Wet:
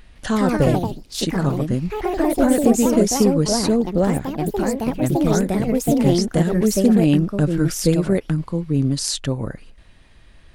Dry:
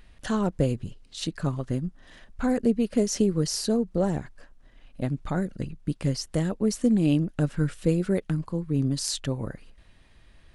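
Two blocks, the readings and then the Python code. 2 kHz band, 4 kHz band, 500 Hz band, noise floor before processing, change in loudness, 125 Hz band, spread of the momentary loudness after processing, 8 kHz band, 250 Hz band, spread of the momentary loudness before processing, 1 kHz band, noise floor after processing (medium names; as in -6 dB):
+9.0 dB, +7.0 dB, +9.0 dB, -56 dBFS, +8.0 dB, +7.0 dB, 8 LU, +9.0 dB, +8.5 dB, 10 LU, +12.0 dB, -47 dBFS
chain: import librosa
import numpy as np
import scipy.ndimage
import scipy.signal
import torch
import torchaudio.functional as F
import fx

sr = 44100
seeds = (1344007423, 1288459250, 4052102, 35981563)

y = fx.echo_pitch(x, sr, ms=158, semitones=3, count=3, db_per_echo=-3.0)
y = y * librosa.db_to_amplitude(6.0)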